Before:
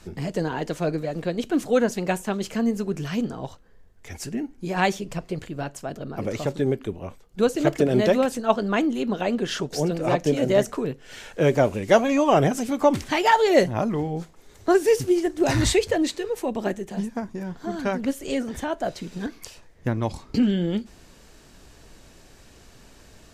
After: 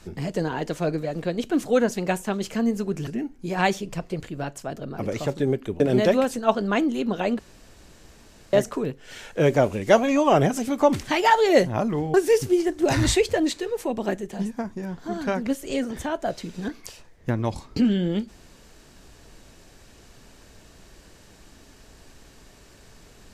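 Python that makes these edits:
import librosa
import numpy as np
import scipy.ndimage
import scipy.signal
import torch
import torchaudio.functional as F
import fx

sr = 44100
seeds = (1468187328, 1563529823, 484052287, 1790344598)

y = fx.edit(x, sr, fx.cut(start_s=3.07, length_s=1.19),
    fx.cut(start_s=6.99, length_s=0.82),
    fx.room_tone_fill(start_s=9.4, length_s=1.14),
    fx.cut(start_s=14.15, length_s=0.57), tone=tone)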